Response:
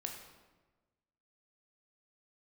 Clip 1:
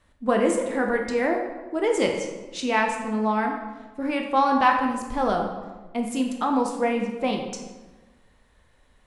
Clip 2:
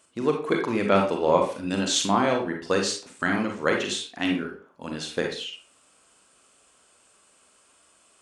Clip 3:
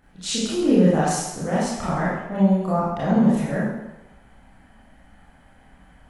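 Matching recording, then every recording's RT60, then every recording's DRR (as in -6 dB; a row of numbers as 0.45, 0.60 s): 1; 1.3, 0.40, 0.95 s; 1.5, 1.5, -9.0 dB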